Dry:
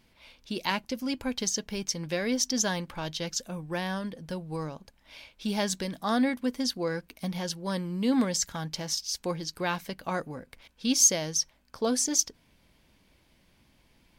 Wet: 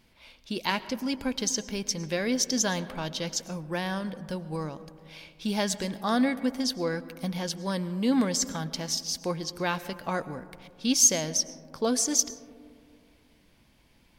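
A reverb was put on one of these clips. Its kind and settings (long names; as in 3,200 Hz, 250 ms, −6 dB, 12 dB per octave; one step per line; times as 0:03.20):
comb and all-pass reverb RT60 2.2 s, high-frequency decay 0.25×, pre-delay 70 ms, DRR 15 dB
level +1 dB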